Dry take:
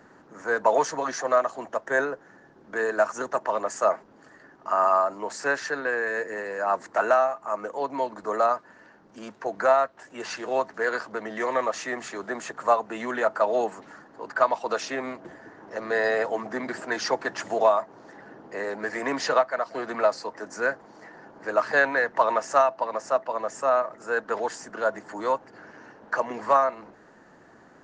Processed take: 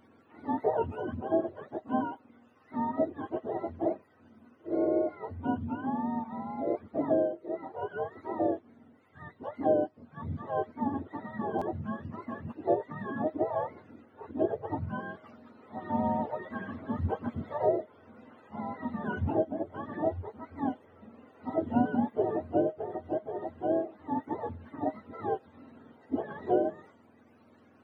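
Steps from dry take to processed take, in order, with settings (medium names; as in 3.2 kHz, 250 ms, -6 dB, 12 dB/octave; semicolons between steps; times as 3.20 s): spectrum inverted on a logarithmic axis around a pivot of 640 Hz; buffer glitch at 11.58 s, samples 512, times 2; trim -5.5 dB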